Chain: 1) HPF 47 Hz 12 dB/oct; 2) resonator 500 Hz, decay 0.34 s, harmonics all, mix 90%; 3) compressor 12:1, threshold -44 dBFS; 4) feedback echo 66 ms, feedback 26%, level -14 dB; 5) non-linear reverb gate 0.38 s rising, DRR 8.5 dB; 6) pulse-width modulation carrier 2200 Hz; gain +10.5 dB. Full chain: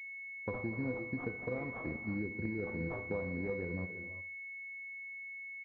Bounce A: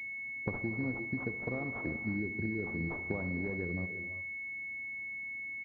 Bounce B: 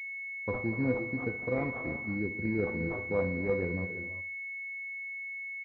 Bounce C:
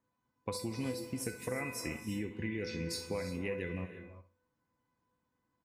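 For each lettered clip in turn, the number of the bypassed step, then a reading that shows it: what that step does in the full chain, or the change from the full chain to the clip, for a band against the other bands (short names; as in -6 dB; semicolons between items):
2, 500 Hz band -4.0 dB; 3, mean gain reduction 4.5 dB; 6, 2 kHz band -5.5 dB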